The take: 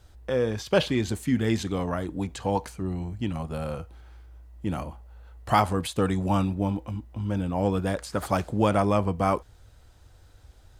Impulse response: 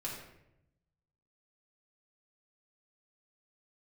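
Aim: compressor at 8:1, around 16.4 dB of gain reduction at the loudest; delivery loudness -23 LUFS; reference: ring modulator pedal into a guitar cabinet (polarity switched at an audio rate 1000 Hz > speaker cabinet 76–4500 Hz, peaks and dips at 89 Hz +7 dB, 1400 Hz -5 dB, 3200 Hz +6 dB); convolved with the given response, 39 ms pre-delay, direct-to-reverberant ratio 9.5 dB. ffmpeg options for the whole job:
-filter_complex "[0:a]acompressor=threshold=-34dB:ratio=8,asplit=2[a][b];[1:a]atrim=start_sample=2205,adelay=39[c];[b][c]afir=irnorm=-1:irlink=0,volume=-10.5dB[d];[a][d]amix=inputs=2:normalize=0,aeval=exprs='val(0)*sgn(sin(2*PI*1000*n/s))':c=same,highpass=76,equalizer=f=89:t=q:w=4:g=7,equalizer=f=1.4k:t=q:w=4:g=-5,equalizer=f=3.2k:t=q:w=4:g=6,lowpass=f=4.5k:w=0.5412,lowpass=f=4.5k:w=1.3066,volume=14.5dB"

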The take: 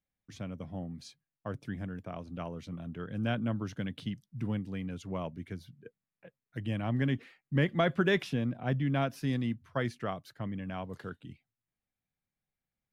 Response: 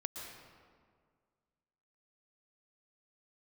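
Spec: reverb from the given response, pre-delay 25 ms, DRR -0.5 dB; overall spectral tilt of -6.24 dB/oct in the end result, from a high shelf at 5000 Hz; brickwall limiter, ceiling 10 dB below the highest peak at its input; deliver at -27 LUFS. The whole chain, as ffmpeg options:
-filter_complex "[0:a]highshelf=f=5k:g=6,alimiter=level_in=0.5dB:limit=-24dB:level=0:latency=1,volume=-0.5dB,asplit=2[a][b];[1:a]atrim=start_sample=2205,adelay=25[c];[b][c]afir=irnorm=-1:irlink=0,volume=1dB[d];[a][d]amix=inputs=2:normalize=0,volume=7dB"

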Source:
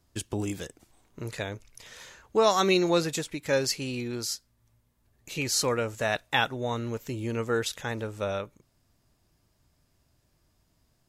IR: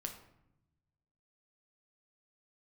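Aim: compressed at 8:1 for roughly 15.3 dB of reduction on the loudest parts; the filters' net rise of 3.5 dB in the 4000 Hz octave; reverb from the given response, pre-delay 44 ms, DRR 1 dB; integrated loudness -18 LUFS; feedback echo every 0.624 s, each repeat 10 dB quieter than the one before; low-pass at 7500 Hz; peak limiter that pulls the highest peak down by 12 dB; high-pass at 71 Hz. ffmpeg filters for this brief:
-filter_complex "[0:a]highpass=71,lowpass=7.5k,equalizer=f=4k:t=o:g=4.5,acompressor=threshold=-34dB:ratio=8,alimiter=level_in=5dB:limit=-24dB:level=0:latency=1,volume=-5dB,aecho=1:1:624|1248|1872|2496:0.316|0.101|0.0324|0.0104,asplit=2[a][b];[1:a]atrim=start_sample=2205,adelay=44[c];[b][c]afir=irnorm=-1:irlink=0,volume=1dB[d];[a][d]amix=inputs=2:normalize=0,volume=20dB"

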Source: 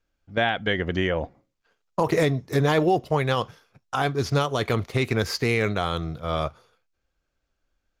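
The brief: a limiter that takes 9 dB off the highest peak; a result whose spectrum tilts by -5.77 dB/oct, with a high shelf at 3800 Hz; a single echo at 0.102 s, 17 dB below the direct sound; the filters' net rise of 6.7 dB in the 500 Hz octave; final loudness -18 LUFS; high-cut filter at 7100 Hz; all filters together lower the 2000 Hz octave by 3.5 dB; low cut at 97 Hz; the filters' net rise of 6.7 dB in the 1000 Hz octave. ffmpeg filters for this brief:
-af "highpass=97,lowpass=7.1k,equalizer=f=500:t=o:g=6.5,equalizer=f=1k:t=o:g=8.5,equalizer=f=2k:t=o:g=-6,highshelf=f=3.8k:g=-8.5,alimiter=limit=-12.5dB:level=0:latency=1,aecho=1:1:102:0.141,volume=6.5dB"

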